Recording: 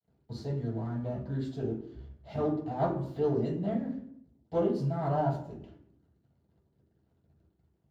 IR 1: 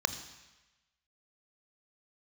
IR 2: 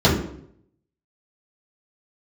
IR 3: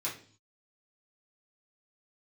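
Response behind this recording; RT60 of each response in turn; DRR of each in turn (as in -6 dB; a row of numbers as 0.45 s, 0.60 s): 2; 1.1 s, 0.70 s, 0.45 s; 10.0 dB, -9.0 dB, -7.5 dB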